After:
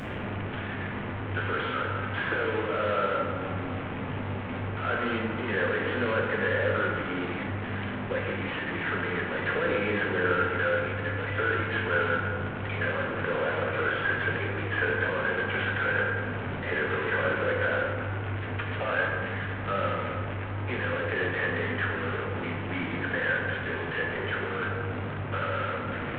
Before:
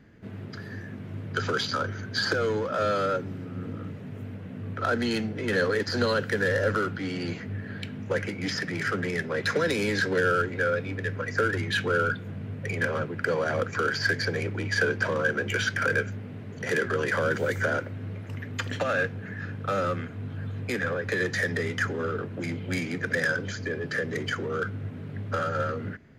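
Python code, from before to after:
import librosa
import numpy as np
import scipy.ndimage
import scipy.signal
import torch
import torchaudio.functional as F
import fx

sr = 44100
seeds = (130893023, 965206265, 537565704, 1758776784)

y = fx.delta_mod(x, sr, bps=16000, step_db=-24.5)
y = fx.low_shelf(y, sr, hz=330.0, db=-3.5)
y = fx.rev_plate(y, sr, seeds[0], rt60_s=2.0, hf_ratio=0.4, predelay_ms=0, drr_db=-1.0)
y = y * librosa.db_to_amplitude(-4.5)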